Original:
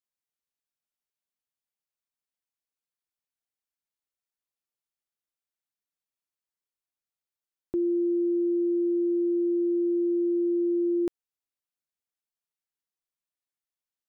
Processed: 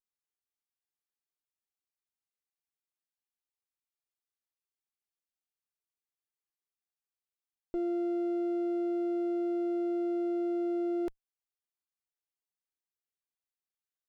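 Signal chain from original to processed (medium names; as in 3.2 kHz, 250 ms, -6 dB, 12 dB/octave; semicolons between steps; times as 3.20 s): comb filter that takes the minimum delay 2.5 ms; trim -5.5 dB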